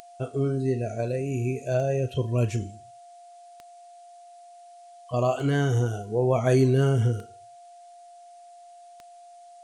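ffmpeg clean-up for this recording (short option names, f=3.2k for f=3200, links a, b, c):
-af "adeclick=t=4,bandreject=f=700:w=30,agate=range=-21dB:threshold=-41dB"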